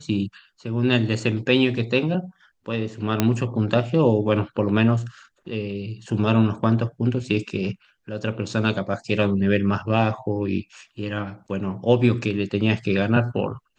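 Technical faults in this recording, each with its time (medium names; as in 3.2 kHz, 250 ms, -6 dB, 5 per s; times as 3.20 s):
3.20 s: pop -5 dBFS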